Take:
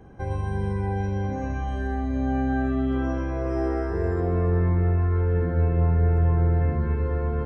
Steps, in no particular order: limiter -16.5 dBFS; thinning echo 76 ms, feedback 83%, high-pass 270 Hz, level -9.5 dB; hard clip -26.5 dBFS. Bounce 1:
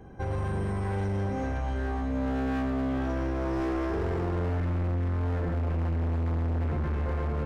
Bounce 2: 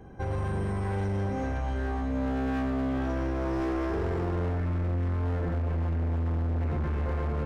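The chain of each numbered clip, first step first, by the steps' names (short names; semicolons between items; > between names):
thinning echo > hard clip > limiter; limiter > thinning echo > hard clip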